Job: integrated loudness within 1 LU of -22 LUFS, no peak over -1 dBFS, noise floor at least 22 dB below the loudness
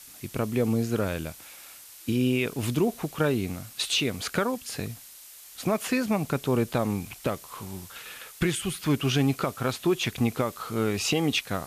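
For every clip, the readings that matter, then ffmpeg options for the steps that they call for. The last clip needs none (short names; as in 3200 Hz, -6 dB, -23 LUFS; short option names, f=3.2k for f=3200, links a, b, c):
noise floor -48 dBFS; noise floor target -50 dBFS; loudness -27.5 LUFS; peak -13.5 dBFS; loudness target -22.0 LUFS
-> -af "afftdn=nr=6:nf=-48"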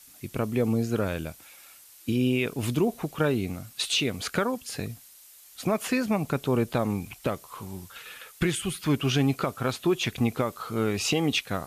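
noise floor -52 dBFS; loudness -27.5 LUFS; peak -14.0 dBFS; loudness target -22.0 LUFS
-> -af "volume=5.5dB"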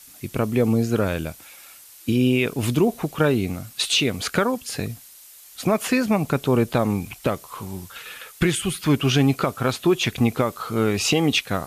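loudness -22.0 LUFS; peak -8.5 dBFS; noise floor -46 dBFS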